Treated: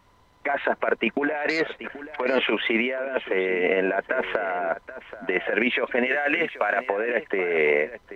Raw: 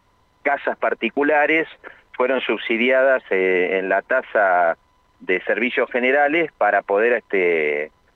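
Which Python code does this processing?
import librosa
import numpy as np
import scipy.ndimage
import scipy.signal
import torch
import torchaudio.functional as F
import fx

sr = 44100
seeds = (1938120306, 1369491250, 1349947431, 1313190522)

y = fx.self_delay(x, sr, depth_ms=0.083, at=(1.49, 2.21))
y = fx.transient(y, sr, attack_db=-2, sustain_db=6, at=(4.17, 4.59))
y = fx.tilt_shelf(y, sr, db=-6.5, hz=1300.0, at=(6.06, 6.88))
y = fx.over_compress(y, sr, threshold_db=-20.0, ratio=-0.5)
y = y + 10.0 ** (-14.0 / 20.0) * np.pad(y, (int(780 * sr / 1000.0), 0))[:len(y)]
y = y * 10.0 ** (-2.0 / 20.0)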